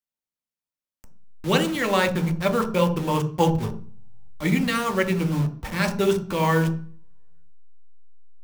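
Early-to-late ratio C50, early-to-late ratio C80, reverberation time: 12.0 dB, 16.0 dB, 0.40 s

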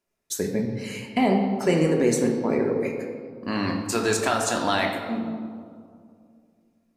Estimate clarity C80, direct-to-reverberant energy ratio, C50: 6.5 dB, 0.5 dB, 4.5 dB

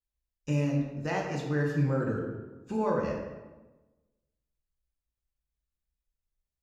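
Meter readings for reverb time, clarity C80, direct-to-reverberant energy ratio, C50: 1.1 s, 5.5 dB, −2.0 dB, 3.0 dB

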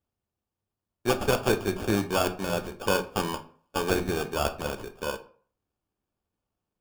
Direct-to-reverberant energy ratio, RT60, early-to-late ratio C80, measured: 7.0 dB, 0.50 s, 19.5 dB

